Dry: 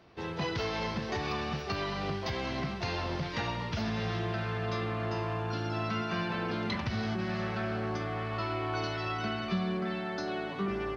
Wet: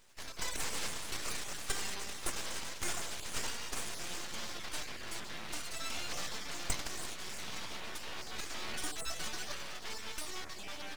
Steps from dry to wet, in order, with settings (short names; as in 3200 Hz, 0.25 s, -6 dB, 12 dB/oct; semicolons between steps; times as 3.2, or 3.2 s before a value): random spectral dropouts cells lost 29%; differentiator; full-wave rectifier; gain +13.5 dB